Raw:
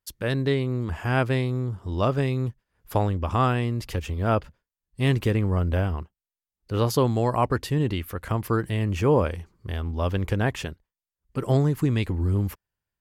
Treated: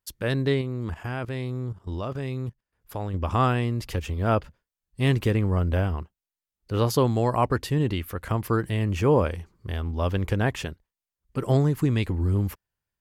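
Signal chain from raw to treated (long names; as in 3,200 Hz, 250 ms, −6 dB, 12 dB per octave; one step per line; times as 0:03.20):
0:00.61–0:03.14: output level in coarse steps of 15 dB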